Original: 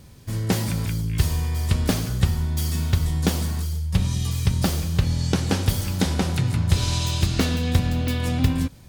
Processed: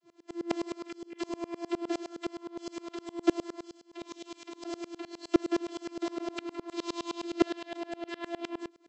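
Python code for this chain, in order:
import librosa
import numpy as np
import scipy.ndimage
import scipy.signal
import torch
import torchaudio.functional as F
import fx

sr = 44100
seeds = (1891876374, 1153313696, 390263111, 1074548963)

y = fx.vocoder(x, sr, bands=32, carrier='saw', carrier_hz=341.0)
y = fx.low_shelf(y, sr, hz=450.0, db=8.0, at=(1.29, 1.89))
y = fx.tremolo_decay(y, sr, direction='swelling', hz=9.7, depth_db=28)
y = y * 10.0 ** (-2.0 / 20.0)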